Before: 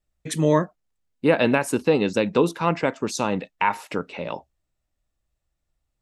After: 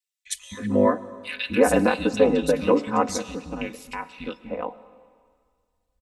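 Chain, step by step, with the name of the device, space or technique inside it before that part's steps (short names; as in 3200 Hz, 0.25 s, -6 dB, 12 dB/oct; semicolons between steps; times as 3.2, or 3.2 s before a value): 2.77–4.18 bell 980 Hz -14.5 dB 2.5 oct; three bands offset in time highs, lows, mids 0.26/0.32 s, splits 200/2100 Hz; ring-modulated robot voice (ring modulator 50 Hz; comb 4 ms, depth 76%); digital reverb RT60 1.9 s, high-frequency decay 0.95×, pre-delay 75 ms, DRR 17 dB; gain +2 dB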